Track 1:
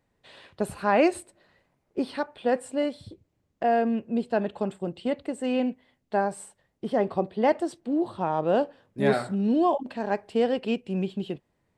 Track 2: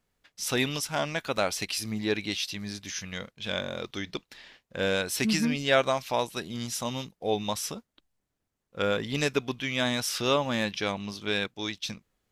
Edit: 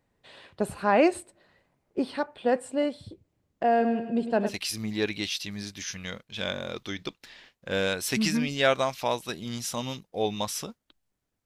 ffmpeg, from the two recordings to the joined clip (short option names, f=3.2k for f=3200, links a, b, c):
-filter_complex "[0:a]asettb=1/sr,asplit=3[a][b][c];[a]atrim=end=3.704[d];[b]atrim=start=3.7:end=4.58,asetpts=PTS-STARTPTS,afade=t=in:d=0.004:c=qsin,afade=t=out:st=0.876:d=0.004:c=qsin,aecho=1:1:103|206|309|412|515:0.355|0.17|0.0817|0.0392|0.0188,atrim=end_sample=38808[e];[c]atrim=start=4.576[f];[d][e]acrossfade=d=0.004:c1=hsin:c2=qsin[g];[g][f]acrossfade=d=0.004:c1=qsin:c2=hsin,apad=whole_dur=11.45,atrim=end=11.45,atrim=end=4.58,asetpts=PTS-STARTPTS[h];[1:a]atrim=start=1.54:end=8.53,asetpts=PTS-STARTPTS[i];[h][i]acrossfade=d=0.12:c1=tri:c2=tri"